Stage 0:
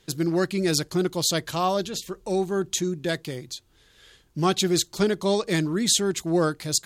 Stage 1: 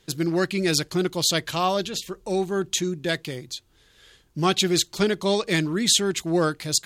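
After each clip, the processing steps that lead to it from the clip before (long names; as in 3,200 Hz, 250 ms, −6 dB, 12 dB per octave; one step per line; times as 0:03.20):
dynamic equaliser 2,600 Hz, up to +6 dB, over −42 dBFS, Q 1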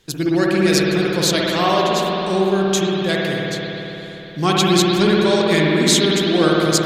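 spring reverb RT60 3.8 s, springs 57 ms, chirp 70 ms, DRR −4 dB
level +2.5 dB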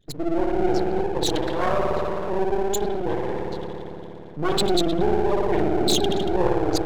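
spectral envelope exaggerated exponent 3
half-wave rectification
wow of a warped record 33 1/3 rpm, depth 100 cents
level −1.5 dB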